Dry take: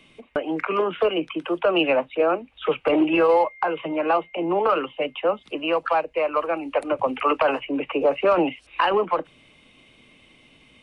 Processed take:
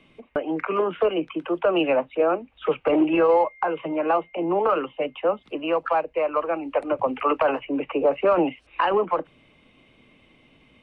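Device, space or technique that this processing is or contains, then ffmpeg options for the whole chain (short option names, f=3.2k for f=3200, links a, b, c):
through cloth: -af "highshelf=f=3.7k:g=-15"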